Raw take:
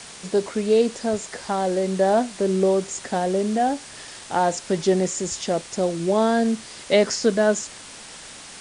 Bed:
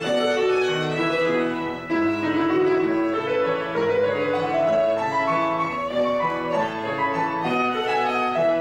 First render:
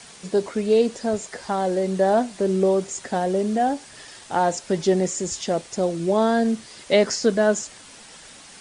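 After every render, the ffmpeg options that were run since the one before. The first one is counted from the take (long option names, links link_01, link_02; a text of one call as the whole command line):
ffmpeg -i in.wav -af "afftdn=noise_reduction=6:noise_floor=-41" out.wav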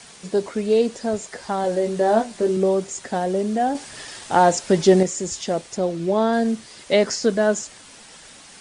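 ffmpeg -i in.wav -filter_complex "[0:a]asettb=1/sr,asplit=3[link_01][link_02][link_03];[link_01]atrim=end=1.624[link_04];[link_02]atrim=start=1.62:end=2.57,asetpts=PTS-STARTPTS,afade=type=in:duration=0.004:curve=qsin,afade=type=out:start_time=0.946:duration=0.004:curve=qsin,asplit=2[link_05][link_06];[link_06]adelay=18,volume=-5dB[link_07];[link_05][link_07]amix=inputs=2:normalize=0,atrim=end_sample=41895[link_08];[link_03]atrim=start=2.566[link_09];[link_04][link_08]acrossfade=duration=0.004:curve1=hsin:curve2=qsin[link_10];[link_10][link_09]acrossfade=duration=0.004:curve1=qsin:curve2=hsin,asettb=1/sr,asplit=3[link_11][link_12][link_13];[link_11]atrim=end=5.774[link_14];[link_12]atrim=start=5.77:end=6.33,asetpts=PTS-STARTPTS,afade=type=in:duration=0.004:curve=qsin,afade=type=out:start_time=0.556:duration=0.004:curve=qsin,acrossover=split=5600[link_15][link_16];[link_16]acompressor=threshold=-54dB:ratio=4:attack=1:release=60[link_17];[link_15][link_17]amix=inputs=2:normalize=0[link_18];[link_13]atrim=start=6.326[link_19];[link_14][link_18]acrossfade=duration=0.004:curve1=hsin:curve2=qsin[link_20];[link_20][link_19]acrossfade=duration=0.004:curve1=qsin:curve2=hsin,asplit=3[link_21][link_22][link_23];[link_21]atrim=end=3.752[link_24];[link_22]atrim=start=3.748:end=5.032,asetpts=PTS-STARTPTS,volume=5.5dB[link_25];[link_23]atrim=start=5.028[link_26];[link_24][link_25]acrossfade=duration=0.004:curve1=hsin:curve2=hsin[link_27];[link_27][link_26]acrossfade=duration=0.004:curve1=hsin:curve2=hsin" out.wav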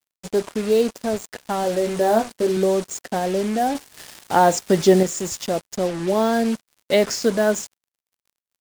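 ffmpeg -i in.wav -af "acrusher=bits=4:mix=0:aa=0.5" out.wav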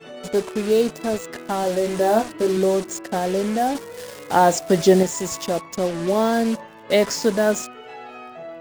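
ffmpeg -i in.wav -i bed.wav -filter_complex "[1:a]volume=-16dB[link_01];[0:a][link_01]amix=inputs=2:normalize=0" out.wav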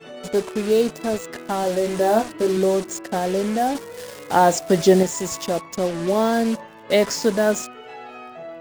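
ffmpeg -i in.wav -af anull out.wav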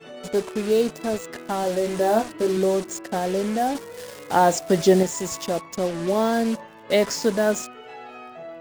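ffmpeg -i in.wav -af "volume=-2dB" out.wav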